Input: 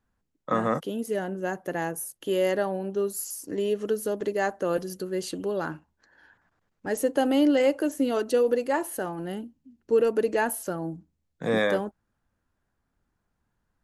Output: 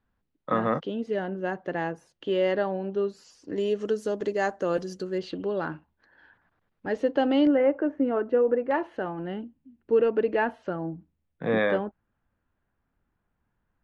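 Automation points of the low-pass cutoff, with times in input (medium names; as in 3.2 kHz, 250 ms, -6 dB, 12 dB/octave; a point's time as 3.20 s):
low-pass 24 dB/octave
4.2 kHz
from 3.56 s 6.9 kHz
from 5.18 s 4 kHz
from 7.47 s 1.9 kHz
from 8.71 s 3.2 kHz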